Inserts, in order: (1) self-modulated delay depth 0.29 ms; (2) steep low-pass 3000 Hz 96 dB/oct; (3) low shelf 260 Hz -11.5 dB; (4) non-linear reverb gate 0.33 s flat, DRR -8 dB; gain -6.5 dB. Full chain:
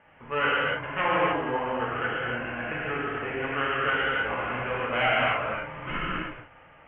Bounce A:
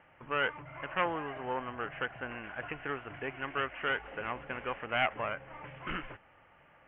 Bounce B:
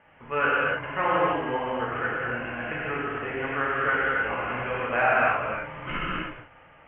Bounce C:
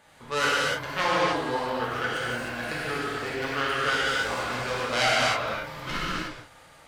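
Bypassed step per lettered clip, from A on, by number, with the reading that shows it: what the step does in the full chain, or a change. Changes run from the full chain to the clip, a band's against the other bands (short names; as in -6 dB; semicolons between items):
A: 4, momentary loudness spread change +1 LU; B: 1, crest factor change +2.0 dB; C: 2, crest factor change +3.5 dB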